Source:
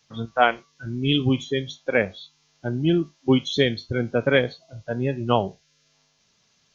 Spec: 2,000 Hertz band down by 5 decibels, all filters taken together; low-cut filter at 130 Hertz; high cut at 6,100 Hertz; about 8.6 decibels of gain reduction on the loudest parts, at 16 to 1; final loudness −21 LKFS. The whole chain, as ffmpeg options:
ffmpeg -i in.wav -af "highpass=130,lowpass=6100,equalizer=frequency=2000:width_type=o:gain=-7,acompressor=threshold=-22dB:ratio=16,volume=9dB" out.wav

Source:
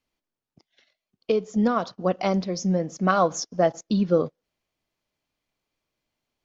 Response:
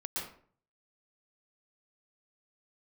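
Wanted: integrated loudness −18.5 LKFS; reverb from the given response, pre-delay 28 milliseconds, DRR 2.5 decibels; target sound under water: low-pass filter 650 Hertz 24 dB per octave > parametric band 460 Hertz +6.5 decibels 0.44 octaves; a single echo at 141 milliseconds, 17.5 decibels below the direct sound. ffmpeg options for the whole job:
-filter_complex "[0:a]aecho=1:1:141:0.133,asplit=2[link_01][link_02];[1:a]atrim=start_sample=2205,adelay=28[link_03];[link_02][link_03]afir=irnorm=-1:irlink=0,volume=-5dB[link_04];[link_01][link_04]amix=inputs=2:normalize=0,lowpass=frequency=650:width=0.5412,lowpass=frequency=650:width=1.3066,equalizer=frequency=460:width_type=o:width=0.44:gain=6.5,volume=3dB"

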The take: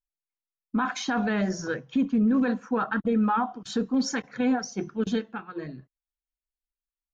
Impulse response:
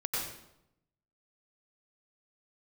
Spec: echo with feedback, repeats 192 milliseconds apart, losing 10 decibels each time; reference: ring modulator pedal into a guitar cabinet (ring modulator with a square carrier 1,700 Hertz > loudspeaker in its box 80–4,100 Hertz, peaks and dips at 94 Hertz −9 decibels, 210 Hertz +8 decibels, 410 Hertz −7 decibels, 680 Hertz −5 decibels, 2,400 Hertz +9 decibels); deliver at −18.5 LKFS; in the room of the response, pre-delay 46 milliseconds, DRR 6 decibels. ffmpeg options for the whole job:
-filter_complex "[0:a]aecho=1:1:192|384|576|768:0.316|0.101|0.0324|0.0104,asplit=2[link_01][link_02];[1:a]atrim=start_sample=2205,adelay=46[link_03];[link_02][link_03]afir=irnorm=-1:irlink=0,volume=-11.5dB[link_04];[link_01][link_04]amix=inputs=2:normalize=0,aeval=exprs='val(0)*sgn(sin(2*PI*1700*n/s))':channel_layout=same,highpass=80,equalizer=frequency=94:width_type=q:width=4:gain=-9,equalizer=frequency=210:width_type=q:width=4:gain=8,equalizer=frequency=410:width_type=q:width=4:gain=-7,equalizer=frequency=680:width_type=q:width=4:gain=-5,equalizer=frequency=2400:width_type=q:width=4:gain=9,lowpass=frequency=4100:width=0.5412,lowpass=frequency=4100:width=1.3066,volume=3.5dB"

